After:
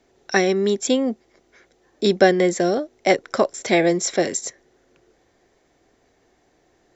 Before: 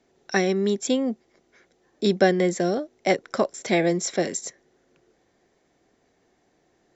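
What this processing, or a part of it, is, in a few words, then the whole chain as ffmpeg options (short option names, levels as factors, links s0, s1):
low shelf boost with a cut just above: -af "lowshelf=f=83:g=6,equalizer=f=180:t=o:w=0.86:g=-5.5,volume=1.68"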